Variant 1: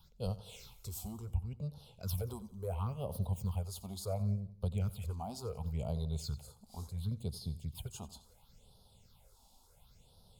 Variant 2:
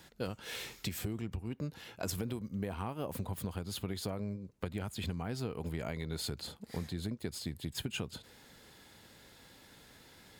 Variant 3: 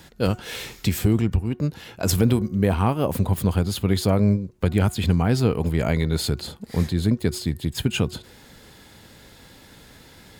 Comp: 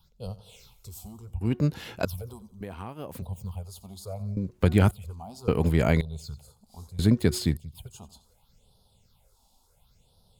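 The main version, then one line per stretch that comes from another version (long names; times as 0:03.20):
1
0:01.41–0:02.05: punch in from 3
0:02.61–0:03.22: punch in from 2
0:04.37–0:04.91: punch in from 3
0:05.48–0:06.01: punch in from 3
0:06.99–0:07.57: punch in from 3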